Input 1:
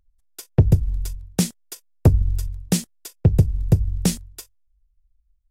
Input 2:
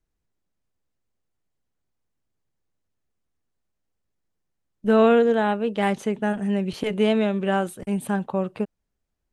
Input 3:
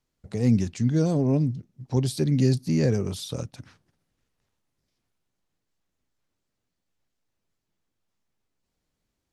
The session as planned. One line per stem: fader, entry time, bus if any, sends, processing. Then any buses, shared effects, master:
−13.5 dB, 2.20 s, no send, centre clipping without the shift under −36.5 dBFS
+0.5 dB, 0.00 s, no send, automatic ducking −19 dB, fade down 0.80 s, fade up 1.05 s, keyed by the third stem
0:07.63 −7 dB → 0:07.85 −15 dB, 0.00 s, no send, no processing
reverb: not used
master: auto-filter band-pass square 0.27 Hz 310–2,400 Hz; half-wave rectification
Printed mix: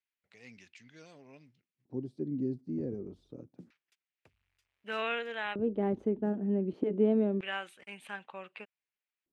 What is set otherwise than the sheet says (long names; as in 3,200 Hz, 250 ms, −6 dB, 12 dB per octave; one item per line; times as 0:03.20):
stem 1 −13.5 dB → −24.0 dB
master: missing half-wave rectification